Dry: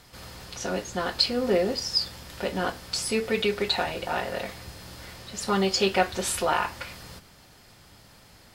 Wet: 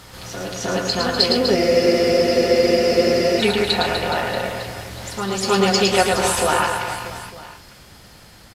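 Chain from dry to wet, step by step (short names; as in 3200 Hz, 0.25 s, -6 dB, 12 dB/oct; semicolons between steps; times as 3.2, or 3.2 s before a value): reverse bouncing-ball echo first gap 0.11 s, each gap 1.25×, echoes 5; downsampling 32000 Hz; on a send: reverse echo 0.31 s -6.5 dB; on the sum: spectral freeze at 1.59, 1.82 s; gain +5 dB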